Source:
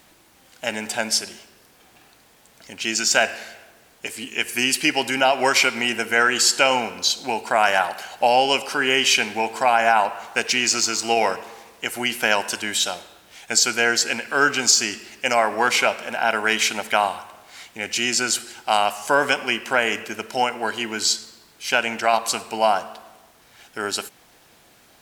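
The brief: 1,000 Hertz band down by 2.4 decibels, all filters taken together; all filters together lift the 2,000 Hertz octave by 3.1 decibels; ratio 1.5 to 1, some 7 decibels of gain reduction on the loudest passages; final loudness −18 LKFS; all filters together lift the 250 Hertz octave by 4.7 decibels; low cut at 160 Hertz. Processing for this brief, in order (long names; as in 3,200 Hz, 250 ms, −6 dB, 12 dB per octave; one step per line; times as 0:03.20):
high-pass filter 160 Hz
parametric band 250 Hz +6.5 dB
parametric band 1,000 Hz −5.5 dB
parametric band 2,000 Hz +6 dB
downward compressor 1.5 to 1, threshold −30 dBFS
level +6.5 dB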